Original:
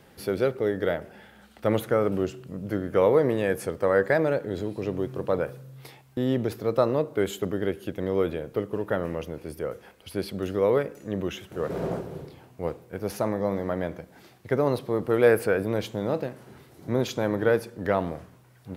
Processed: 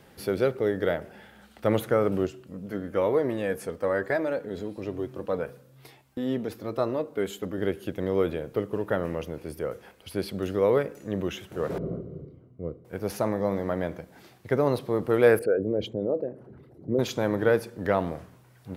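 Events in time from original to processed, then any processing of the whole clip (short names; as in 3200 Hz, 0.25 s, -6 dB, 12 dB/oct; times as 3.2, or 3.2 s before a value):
2.27–7.58 flange 1.1 Hz, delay 2.7 ms, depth 1.9 ms, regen -41%
11.78–12.85 running mean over 52 samples
15.39–16.99 formant sharpening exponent 2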